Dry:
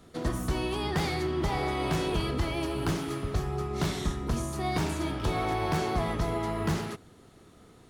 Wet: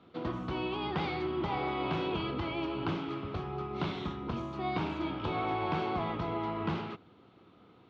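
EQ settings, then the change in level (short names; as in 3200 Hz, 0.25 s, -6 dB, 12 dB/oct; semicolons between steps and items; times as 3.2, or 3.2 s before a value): speaker cabinet 140–3300 Hz, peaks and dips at 150 Hz -5 dB, 240 Hz -4 dB, 420 Hz -5 dB, 640 Hz -5 dB, 1800 Hz -10 dB; 0.0 dB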